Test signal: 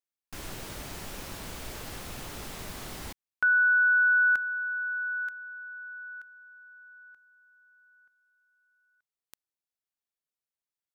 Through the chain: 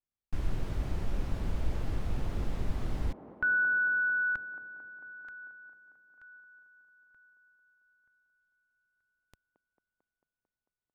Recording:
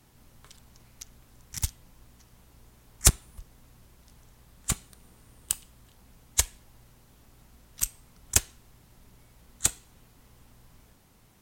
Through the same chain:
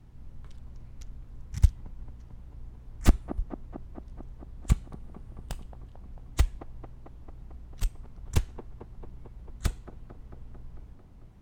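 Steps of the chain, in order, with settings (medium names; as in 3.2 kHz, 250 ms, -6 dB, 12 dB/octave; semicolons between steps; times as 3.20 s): integer overflow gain 13 dB; RIAA curve playback; feedback echo behind a band-pass 223 ms, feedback 72%, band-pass 500 Hz, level -6.5 dB; trim -3.5 dB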